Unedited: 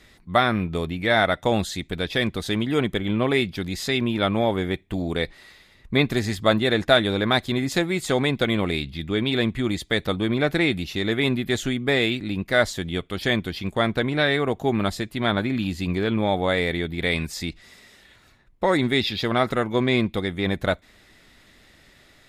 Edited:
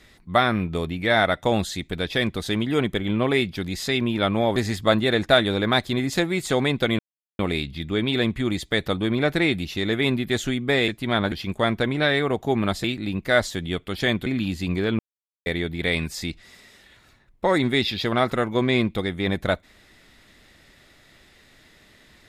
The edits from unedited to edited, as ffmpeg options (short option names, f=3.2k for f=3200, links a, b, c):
-filter_complex "[0:a]asplit=9[a][b][c][d][e][f][g][h][i];[a]atrim=end=4.562[j];[b]atrim=start=6.148:end=8.58,asetpts=PTS-STARTPTS,afade=t=out:st=2.428:d=0.004:c=hsin,apad=pad_dur=0.4[k];[c]atrim=start=8.58:end=12.072,asetpts=PTS-STARTPTS,afade=t=in:d=0.004:c=hsin[l];[d]atrim=start=15.008:end=15.452[m];[e]atrim=start=13.488:end=15.012[n];[f]atrim=start=12.068:end=13.492[o];[g]atrim=start=15.448:end=16.18,asetpts=PTS-STARTPTS,afade=t=out:st=0.728:d=0.004:c=hsin[p];[h]atrim=start=16.18:end=16.65,asetpts=PTS-STARTPTS,volume=0[q];[i]atrim=start=16.65,asetpts=PTS-STARTPTS,afade=t=in:d=0.004:c=hsin[r];[k][l]concat=n=2:v=0:a=1[s];[j][s]acrossfade=d=0.004:c1=hsin:c2=hsin[t];[t][m]acrossfade=d=0.004:c1=hsin:c2=hsin[u];[u][n]acrossfade=d=0.004:c1=hsin:c2=hsin[v];[v][o]acrossfade=d=0.004:c1=hsin:c2=hsin[w];[p][q][r]concat=n=3:v=0:a=1[x];[w][x]acrossfade=d=0.004:c1=hsin:c2=hsin"